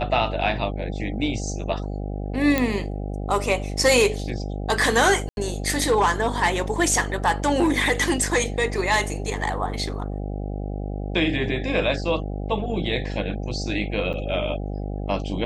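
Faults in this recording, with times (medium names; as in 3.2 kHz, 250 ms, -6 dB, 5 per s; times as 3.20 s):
buzz 50 Hz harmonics 16 -29 dBFS
2.58 s: pop -7 dBFS
5.29–5.37 s: dropout 81 ms
14.13–14.14 s: dropout 7.9 ms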